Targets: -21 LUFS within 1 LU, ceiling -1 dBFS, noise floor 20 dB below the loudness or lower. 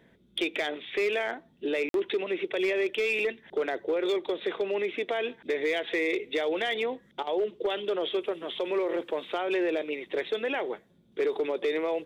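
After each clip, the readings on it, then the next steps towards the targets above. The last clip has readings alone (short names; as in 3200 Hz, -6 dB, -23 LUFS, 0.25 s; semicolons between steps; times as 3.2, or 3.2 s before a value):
clipped 1.2%; flat tops at -21.5 dBFS; dropouts 1; longest dropout 52 ms; loudness -30.0 LUFS; peak -21.5 dBFS; loudness target -21.0 LUFS
-> clip repair -21.5 dBFS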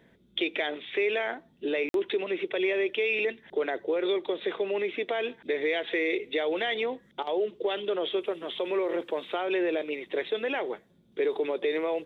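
clipped 0.0%; dropouts 1; longest dropout 52 ms
-> interpolate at 1.89, 52 ms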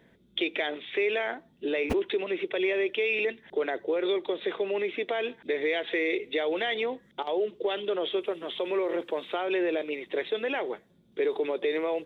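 dropouts 0; loudness -29.5 LUFS; peak -14.5 dBFS; loudness target -21.0 LUFS
-> gain +8.5 dB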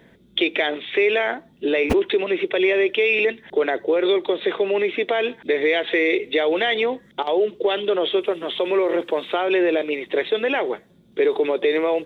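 loudness -21.0 LUFS; peak -6.0 dBFS; noise floor -53 dBFS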